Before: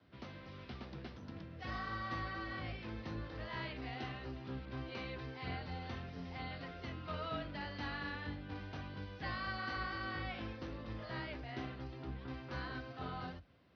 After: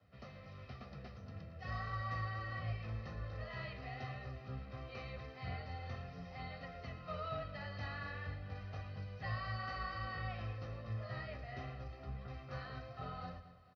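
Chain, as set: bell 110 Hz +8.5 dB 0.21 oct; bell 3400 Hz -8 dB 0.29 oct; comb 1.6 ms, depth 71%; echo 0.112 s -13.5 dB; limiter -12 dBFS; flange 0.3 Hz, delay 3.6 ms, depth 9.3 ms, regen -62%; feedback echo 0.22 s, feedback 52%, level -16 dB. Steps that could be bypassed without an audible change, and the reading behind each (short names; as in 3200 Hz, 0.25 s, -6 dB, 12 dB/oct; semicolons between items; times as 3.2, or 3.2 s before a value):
limiter -12 dBFS: input peak -24.0 dBFS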